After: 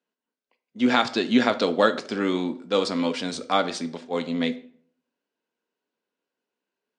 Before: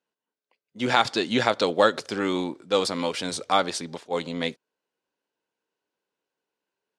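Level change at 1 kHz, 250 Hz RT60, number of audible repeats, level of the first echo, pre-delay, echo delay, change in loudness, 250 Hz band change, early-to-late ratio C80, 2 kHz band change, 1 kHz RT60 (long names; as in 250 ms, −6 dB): −1.5 dB, 0.65 s, no echo audible, no echo audible, 3 ms, no echo audible, +1.0 dB, +5.5 dB, 19.5 dB, 0.0 dB, 0.50 s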